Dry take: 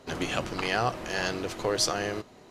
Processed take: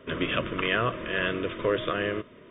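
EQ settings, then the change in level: Butterworth band-stop 800 Hz, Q 2.3; brick-wall FIR low-pass 3700 Hz; low shelf 130 Hz -3.5 dB; +3.5 dB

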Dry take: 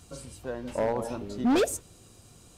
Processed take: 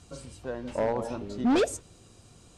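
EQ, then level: Bessel low-pass 7700 Hz, order 8; 0.0 dB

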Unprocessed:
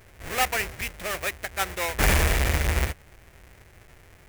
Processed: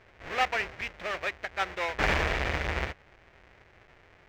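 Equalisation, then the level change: air absorption 200 m; low shelf 240 Hz -11 dB; 0.0 dB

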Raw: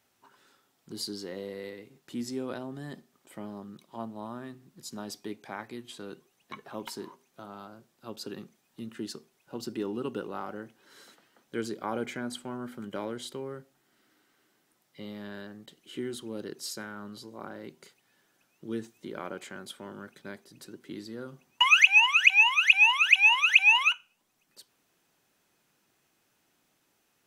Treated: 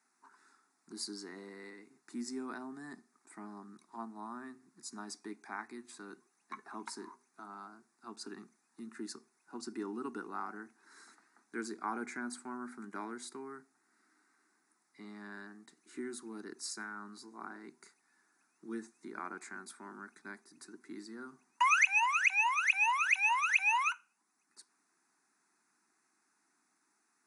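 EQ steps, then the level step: HPF 240 Hz 24 dB/oct; brick-wall FIR low-pass 11000 Hz; fixed phaser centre 1300 Hz, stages 4; 0.0 dB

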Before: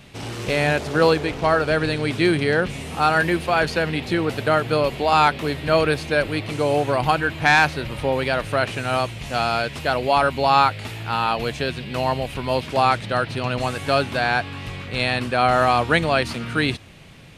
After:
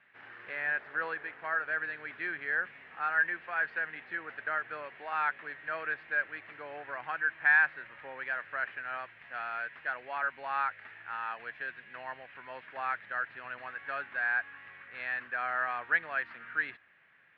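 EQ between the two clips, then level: band-pass 1700 Hz, Q 5.2; air absorption 420 m; 0.0 dB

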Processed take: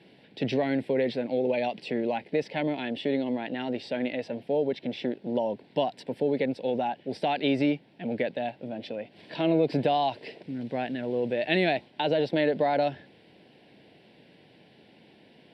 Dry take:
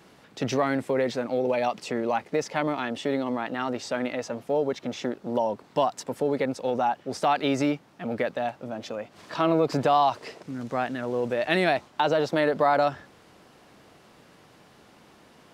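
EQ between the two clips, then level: BPF 120–5900 Hz; fixed phaser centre 2900 Hz, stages 4; +1.0 dB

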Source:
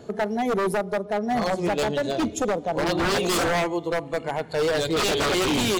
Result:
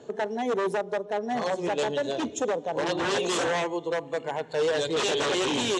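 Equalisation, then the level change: speaker cabinet 190–7600 Hz, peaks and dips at 200 Hz -10 dB, 320 Hz -5 dB, 690 Hz -5 dB, 1300 Hz -7 dB, 2200 Hz -6 dB, 4700 Hz -9 dB; 0.0 dB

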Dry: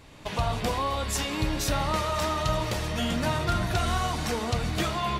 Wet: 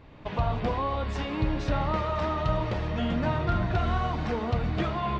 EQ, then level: air absorption 120 m; tape spacing loss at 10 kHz 21 dB; +1.5 dB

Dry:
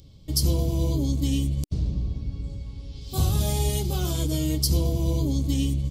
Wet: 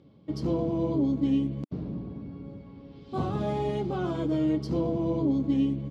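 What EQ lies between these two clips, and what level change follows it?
Chebyshev band-pass 220–1500 Hz, order 2; +3.5 dB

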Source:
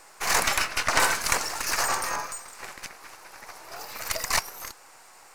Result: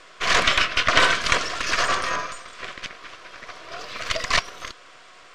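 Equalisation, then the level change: Butterworth band-stop 850 Hz, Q 3.9; air absorption 130 m; bell 3300 Hz +11 dB 0.42 oct; +6.0 dB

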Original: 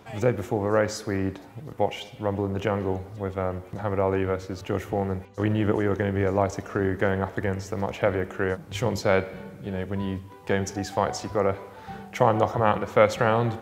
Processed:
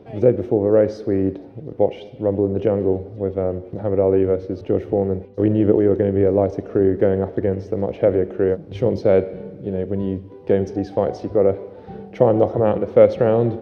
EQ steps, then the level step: polynomial smoothing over 15 samples; bell 360 Hz +5.5 dB 1.2 oct; resonant low shelf 750 Hz +9.5 dB, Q 1.5; -6.5 dB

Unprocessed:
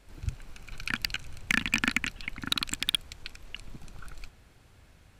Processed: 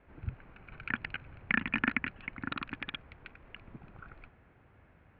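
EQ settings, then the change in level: HPF 110 Hz 6 dB/oct; LPF 2300 Hz 24 dB/oct; air absorption 140 m; 0.0 dB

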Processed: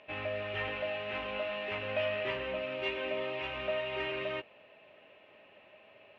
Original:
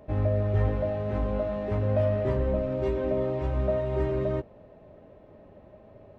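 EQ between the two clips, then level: band-pass 2800 Hz, Q 0.96; air absorption 89 m; bell 2700 Hz +14 dB 0.62 oct; +6.0 dB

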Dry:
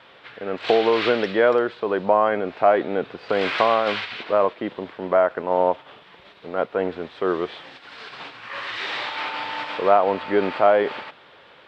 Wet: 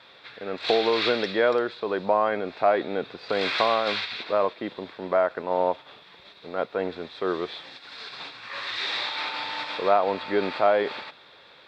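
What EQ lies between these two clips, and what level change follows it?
bell 3900 Hz +8.5 dB 0.85 oct; high shelf 5200 Hz +6 dB; notch 3000 Hz, Q 6.5; -4.5 dB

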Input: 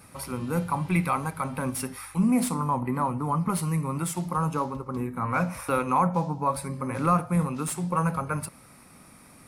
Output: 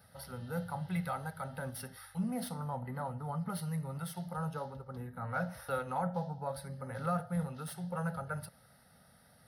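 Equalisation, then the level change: HPF 61 Hz; fixed phaser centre 1600 Hz, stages 8; -6.5 dB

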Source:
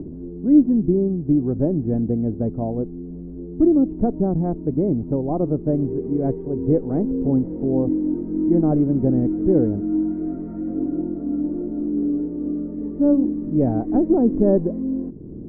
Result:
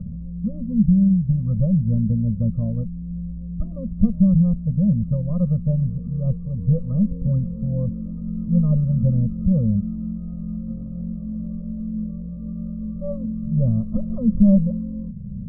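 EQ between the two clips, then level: elliptic band-stop 210–550 Hz, stop band 40 dB; Butterworth band-stop 790 Hz, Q 0.73; brick-wall FIR low-pass 1300 Hz; +7.5 dB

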